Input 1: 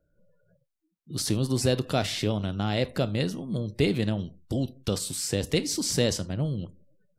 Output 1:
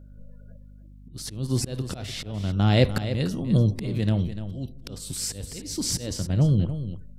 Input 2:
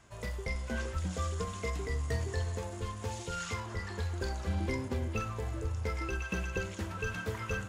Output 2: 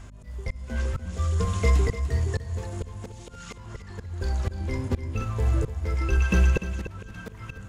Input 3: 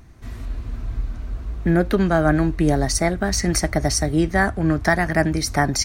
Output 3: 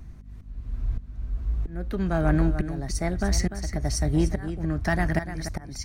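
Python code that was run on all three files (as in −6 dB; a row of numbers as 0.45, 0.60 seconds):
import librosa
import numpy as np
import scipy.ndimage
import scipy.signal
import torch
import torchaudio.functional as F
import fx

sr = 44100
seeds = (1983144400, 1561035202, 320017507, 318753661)

p1 = fx.low_shelf(x, sr, hz=130.0, db=11.5)
p2 = fx.auto_swell(p1, sr, attack_ms=688.0)
p3 = p2 + fx.echo_single(p2, sr, ms=296, db=-11.5, dry=0)
p4 = 10.0 ** (-6.5 / 20.0) * np.tanh(p3 / 10.0 ** (-6.5 / 20.0))
p5 = fx.add_hum(p4, sr, base_hz=50, snr_db=21)
y = p5 * 10.0 ** (-26 / 20.0) / np.sqrt(np.mean(np.square(p5)))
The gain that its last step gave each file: +7.0, +8.5, −5.5 decibels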